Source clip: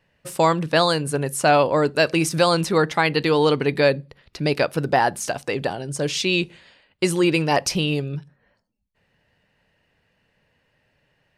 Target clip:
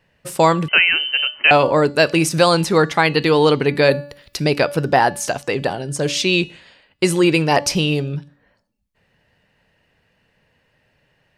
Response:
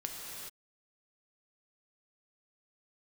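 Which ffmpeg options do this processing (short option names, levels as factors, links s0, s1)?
-filter_complex "[0:a]asettb=1/sr,asplit=3[s0][s1][s2];[s0]atrim=end=3.914[s3];[s1]atrim=start=3.91:end=4.44,asetpts=PTS-STARTPTS,afade=t=in:d=0.004:c=qsin,afade=t=out:st=0.526:d=0.004:c=qsin,aemphasis=mode=production:type=75kf[s4];[s2]atrim=start=4.436[s5];[s3][s4]acrossfade=d=0.004:c1=hsin:c2=qsin[s6];[s6][s5]acrossfade=d=0.004:c1=qsin:c2=hsin,bandreject=f=287.6:t=h:w=4,bandreject=f=575.2:t=h:w=4,bandreject=f=862.8:t=h:w=4,bandreject=f=1150.4:t=h:w=4,bandreject=f=1438:t=h:w=4,bandreject=f=1725.6:t=h:w=4,bandreject=f=2013.2:t=h:w=4,bandreject=f=2300.8:t=h:w=4,bandreject=f=2588.4:t=h:w=4,bandreject=f=2876:t=h:w=4,bandreject=f=3163.6:t=h:w=4,bandreject=f=3451.2:t=h:w=4,bandreject=f=3738.8:t=h:w=4,bandreject=f=4026.4:t=h:w=4,bandreject=f=4314:t=h:w=4,bandreject=f=4601.6:t=h:w=4,bandreject=f=4889.2:t=h:w=4,bandreject=f=5176.8:t=h:w=4,bandreject=f=5464.4:t=h:w=4,bandreject=f=5752:t=h:w=4,bandreject=f=6039.6:t=h:w=4,bandreject=f=6327.2:t=h:w=4,bandreject=f=6614.8:t=h:w=4,bandreject=f=6902.4:t=h:w=4,bandreject=f=7190:t=h:w=4,bandreject=f=7477.6:t=h:w=4,bandreject=f=7765.2:t=h:w=4,bandreject=f=8052.8:t=h:w=4,asettb=1/sr,asplit=3[s7][s8][s9];[s7]atrim=end=0.684[s10];[s8]atrim=start=0.68:end=1.51,asetpts=PTS-STARTPTS,afade=t=in:d=0.004:c=qsin,afade=t=out:st=0.826:d=0.004:c=qsin,lowpass=f=2700:t=q:w=0.5098,lowpass=f=2700:t=q:w=0.6013,lowpass=f=2700:t=q:w=0.9,lowpass=f=2700:t=q:w=2.563,afreqshift=-3200[s11];[s9]atrim=start=1.506[s12];[s10][s11]acrossfade=d=0.004:c1=hsin:c2=qsin[s13];[s13][s12]acrossfade=d=0.004:c1=qsin:c2=hsin,volume=1.58"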